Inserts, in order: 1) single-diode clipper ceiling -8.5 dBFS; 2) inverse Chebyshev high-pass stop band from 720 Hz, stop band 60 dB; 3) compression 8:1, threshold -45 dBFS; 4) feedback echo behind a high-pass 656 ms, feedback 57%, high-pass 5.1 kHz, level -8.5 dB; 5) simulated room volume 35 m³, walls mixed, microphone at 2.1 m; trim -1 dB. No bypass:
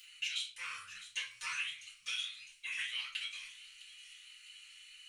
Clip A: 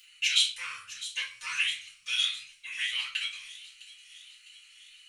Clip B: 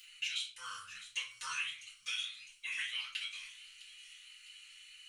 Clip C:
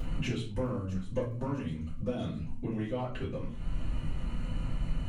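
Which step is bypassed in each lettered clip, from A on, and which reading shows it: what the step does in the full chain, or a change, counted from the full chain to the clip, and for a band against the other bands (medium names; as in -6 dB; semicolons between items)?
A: 3, mean gain reduction 5.5 dB; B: 1, 1 kHz band +3.0 dB; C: 2, crest factor change -6.0 dB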